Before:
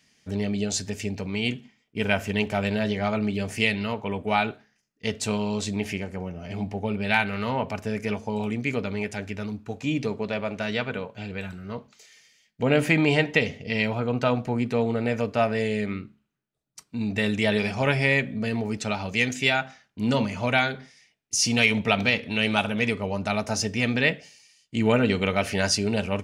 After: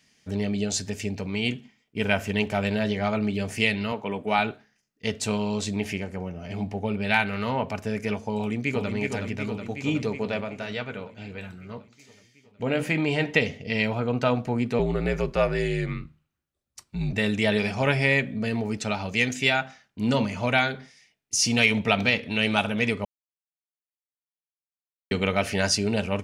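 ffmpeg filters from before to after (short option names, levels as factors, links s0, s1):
-filter_complex "[0:a]asettb=1/sr,asplit=3[s0][s1][s2];[s0]atrim=end=3.924[s3];[s1]atrim=start=3.92:end=4.39,asetpts=PTS-STARTPTS,afade=t=in:d=0.004:c=qsin,afade=t=out:st=0.466:d=0.004:c=qsin,highpass=150[s4];[s2]atrim=start=4.386[s5];[s3][s4]acrossfade=d=0.004:c1=hsin:c2=qsin[s6];[s6][s5]acrossfade=d=0.004:c1=qsin:c2=hsin,asplit=2[s7][s8];[s8]afade=t=in:st=8.37:d=0.01,afade=t=out:st=8.92:d=0.01,aecho=0:1:370|740|1110|1480|1850|2220|2590|2960|3330|3700|4070|4440:0.562341|0.421756|0.316317|0.237238|0.177928|0.133446|0.100085|0.0750635|0.0562976|0.0422232|0.0316674|0.0237506[s9];[s7][s9]amix=inputs=2:normalize=0,asplit=3[s10][s11][s12];[s10]afade=t=out:st=10.43:d=0.02[s13];[s11]flanger=delay=6.3:depth=4.1:regen=-74:speed=1.3:shape=sinusoidal,afade=t=in:st=10.43:d=0.02,afade=t=out:st=13.2:d=0.02[s14];[s12]afade=t=in:st=13.2:d=0.02[s15];[s13][s14][s15]amix=inputs=3:normalize=0,asettb=1/sr,asplit=3[s16][s17][s18];[s16]atrim=end=14.794[s19];[s17]atrim=start=14.79:end=17.13,asetpts=PTS-STARTPTS,afade=t=in:d=0.004:c=qsin,afade=t=out:st=2.336:d=0.004:c=qsin,afreqshift=-60[s20];[s18]atrim=start=17.126[s21];[s19][s20]acrossfade=d=0.004:c1=hsin:c2=qsin[s22];[s22][s21]acrossfade=d=0.004:c1=qsin:c2=hsin,asplit=3[s23][s24][s25];[s23]atrim=end=23.05,asetpts=PTS-STARTPTS,afade=t=out:st=23.046:d=0.004:c=hsin[s26];[s24]atrim=start=23.05:end=25.11,asetpts=PTS-STARTPTS,volume=0[s27];[s25]atrim=start=25.11,asetpts=PTS-STARTPTS,afade=t=in:d=0.004:c=hsin[s28];[s26][s27][s28]concat=n=3:v=0:a=1"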